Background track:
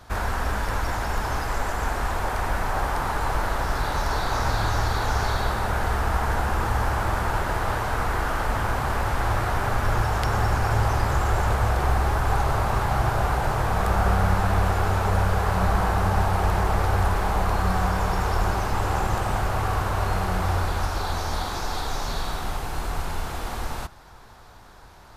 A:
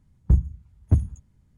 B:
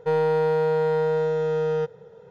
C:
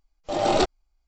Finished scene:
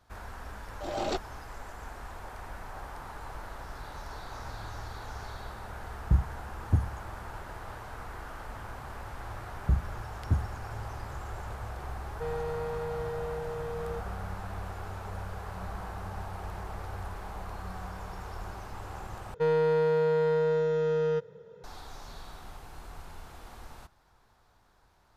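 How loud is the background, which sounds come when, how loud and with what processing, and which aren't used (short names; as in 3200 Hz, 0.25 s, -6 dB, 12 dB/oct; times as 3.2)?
background track -17 dB
0.52 add C -11 dB
5.81 add A -6 dB
9.39 add A -8 dB
12.14 add B -14 dB + comb 4.8 ms, depth 33%
19.34 replace with B -3 dB + bell 760 Hz -14 dB 0.22 oct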